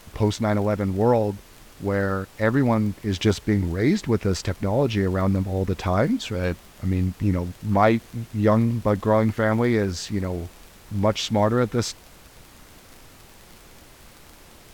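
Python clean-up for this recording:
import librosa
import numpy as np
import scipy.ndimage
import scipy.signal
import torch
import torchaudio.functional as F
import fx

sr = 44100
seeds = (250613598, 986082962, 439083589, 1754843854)

y = fx.fix_declick_ar(x, sr, threshold=6.5)
y = fx.noise_reduce(y, sr, print_start_s=12.04, print_end_s=12.54, reduce_db=19.0)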